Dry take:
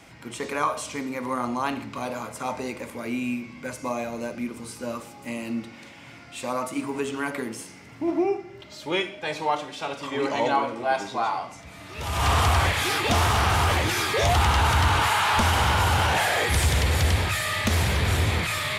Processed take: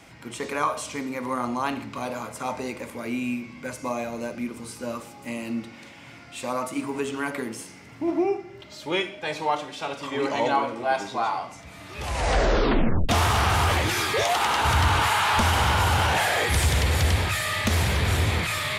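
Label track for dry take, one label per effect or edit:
11.930000	11.930000	tape stop 1.16 s
14.220000	14.640000	HPF 500 Hz -> 230 Hz

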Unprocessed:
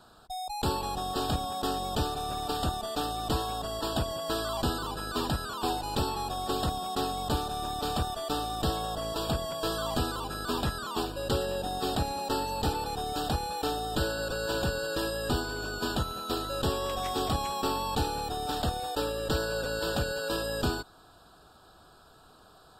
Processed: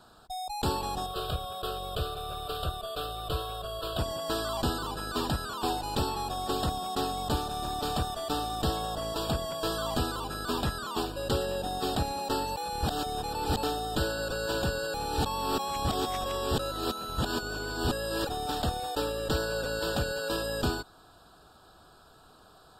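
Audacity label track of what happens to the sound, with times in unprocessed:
1.060000	3.990000	fixed phaser centre 1300 Hz, stages 8
7.020000	7.580000	echo throw 0.33 s, feedback 75%, level -15.5 dB
12.560000	13.630000	reverse
14.940000	18.270000	reverse

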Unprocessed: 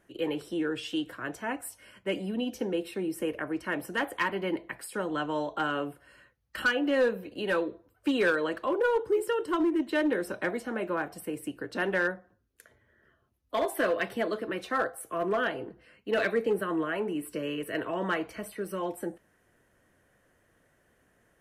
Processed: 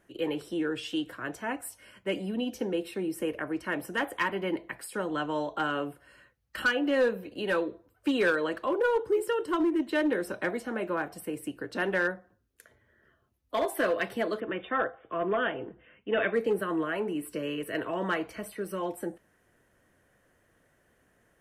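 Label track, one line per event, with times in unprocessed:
3.890000	4.540000	notch 4300 Hz
14.400000	16.340000	brick-wall FIR low-pass 3700 Hz

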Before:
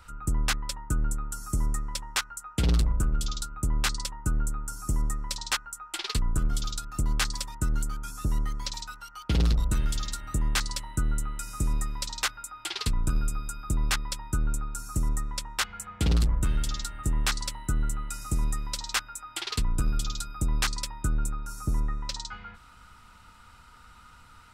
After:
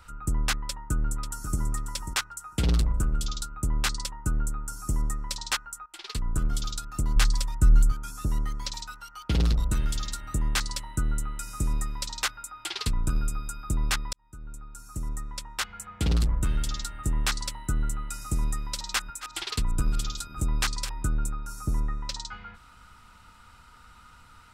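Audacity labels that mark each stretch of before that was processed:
0.530000	1.590000	echo throw 0.54 s, feedback 25%, level -8.5 dB
5.860000	6.400000	fade in, from -17 dB
7.160000	7.920000	low shelf 100 Hz +12 dB
14.130000	16.770000	fade in equal-power
18.440000	21.050000	reverse delay 0.331 s, level -14 dB

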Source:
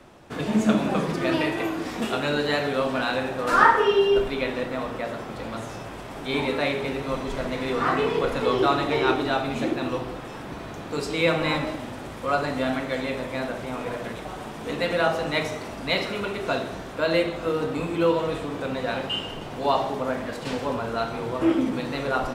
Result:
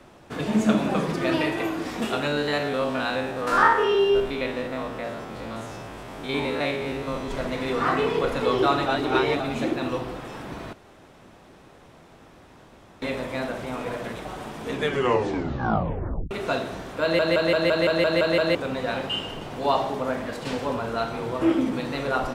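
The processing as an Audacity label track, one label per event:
2.270000	7.310000	stepped spectrum every 50 ms
8.860000	9.400000	reverse
10.730000	13.020000	room tone
14.630000	14.630000	tape stop 1.68 s
17.020000	17.020000	stutter in place 0.17 s, 9 plays

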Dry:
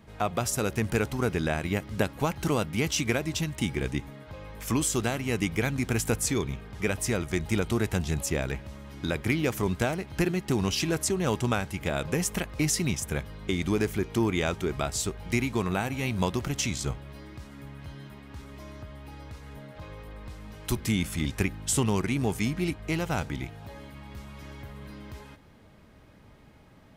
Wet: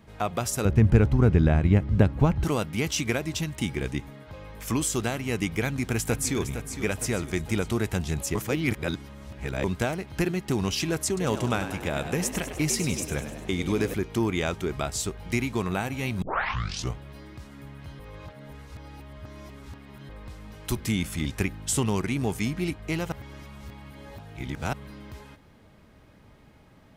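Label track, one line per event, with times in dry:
0.650000	2.440000	RIAA curve playback
5.630000	6.380000	echo throw 0.46 s, feedback 50%, level -9.5 dB
8.350000	9.640000	reverse
11.070000	13.940000	frequency-shifting echo 0.1 s, feedback 60%, per repeat +78 Hz, level -10 dB
16.220000	16.220000	tape start 0.73 s
17.990000	20.090000	reverse
23.120000	24.730000	reverse

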